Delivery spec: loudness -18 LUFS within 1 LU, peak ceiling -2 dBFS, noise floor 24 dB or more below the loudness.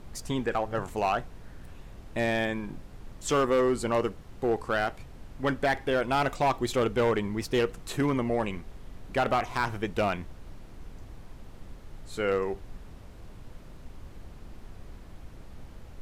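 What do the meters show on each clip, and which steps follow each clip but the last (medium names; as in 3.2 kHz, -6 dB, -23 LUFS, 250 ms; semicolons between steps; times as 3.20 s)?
clipped samples 0.8%; clipping level -19.0 dBFS; noise floor -47 dBFS; noise floor target -53 dBFS; loudness -29.0 LUFS; peak level -19.0 dBFS; loudness target -18.0 LUFS
-> clip repair -19 dBFS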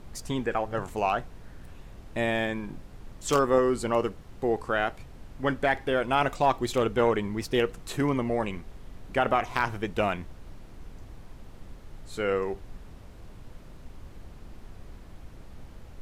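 clipped samples 0.0%; noise floor -47 dBFS; noise floor target -52 dBFS
-> noise print and reduce 6 dB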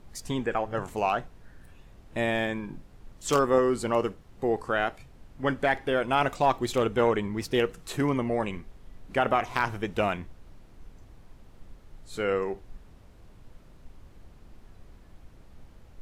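noise floor -53 dBFS; loudness -28.0 LUFS; peak level -10.0 dBFS; loudness target -18.0 LUFS
-> trim +10 dB; peak limiter -2 dBFS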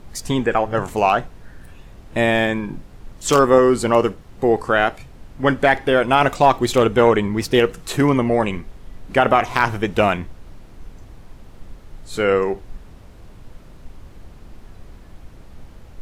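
loudness -18.0 LUFS; peak level -2.0 dBFS; noise floor -43 dBFS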